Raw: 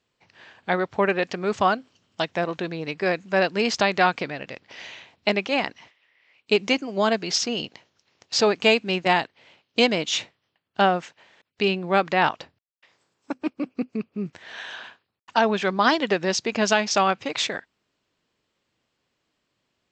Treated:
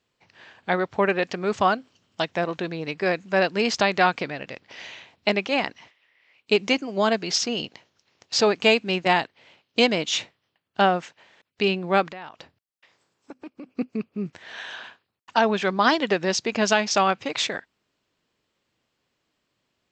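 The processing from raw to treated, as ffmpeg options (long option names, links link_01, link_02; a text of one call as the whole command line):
ffmpeg -i in.wav -filter_complex "[0:a]asplit=3[link_01][link_02][link_03];[link_01]afade=type=out:start_time=12.08:duration=0.02[link_04];[link_02]acompressor=threshold=-38dB:ratio=4:attack=3.2:release=140:knee=1:detection=peak,afade=type=in:start_time=12.08:duration=0.02,afade=type=out:start_time=13.68:duration=0.02[link_05];[link_03]afade=type=in:start_time=13.68:duration=0.02[link_06];[link_04][link_05][link_06]amix=inputs=3:normalize=0" out.wav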